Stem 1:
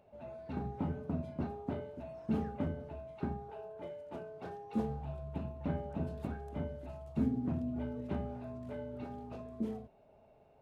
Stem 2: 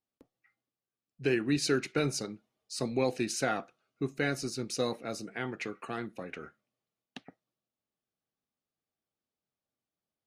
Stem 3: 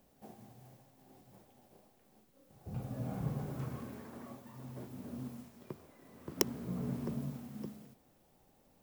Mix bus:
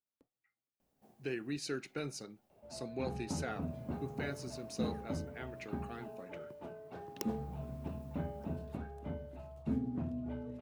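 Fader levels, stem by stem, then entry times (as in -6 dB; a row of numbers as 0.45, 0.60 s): -3.0, -10.5, -11.5 dB; 2.50, 0.00, 0.80 s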